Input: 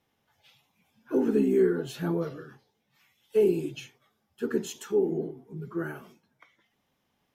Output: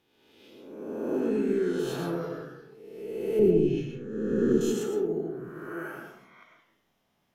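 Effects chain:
peak hold with a rise ahead of every peak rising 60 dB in 1.29 s
0:05.49–0:05.97: high-pass filter 470 Hz 6 dB per octave
in parallel at −1.5 dB: downward compressor, threshold −30 dBFS, peak gain reduction 12.5 dB
0:01.20–0:01.79: on the sum: Bessel low-pass filter 8,800 Hz, order 2
0:03.39–0:04.61: spectral tilt −4.5 dB per octave
on a send at −2.5 dB: convolution reverb RT60 0.60 s, pre-delay 66 ms
on the sum: level −8.5 dB

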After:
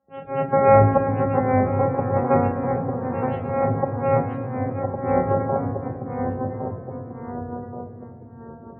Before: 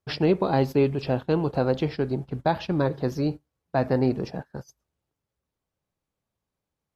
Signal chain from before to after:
samples sorted by size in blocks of 128 samples
elliptic low-pass filter 5,700 Hz, stop band 40 dB
parametric band 720 Hz +7.5 dB 1.6 octaves
mains-hum notches 60/120/180/240/300/360/420/480/540 Hz
in parallel at −0.5 dB: brickwall limiter −14.5 dBFS, peak gain reduction 8.5 dB
on the sum: volume swells 364 ms
spectral peaks only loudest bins 32
dynamic equaliser 360 Hz, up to −3 dB, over −33 dBFS, Q 0.91
speed change −21%
delay with pitch and tempo change per echo 782 ms, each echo −1 semitone, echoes 3, each echo −6 dB
convolution reverb RT60 3.1 s, pre-delay 3 ms, DRR 3.5 dB
level −4.5 dB

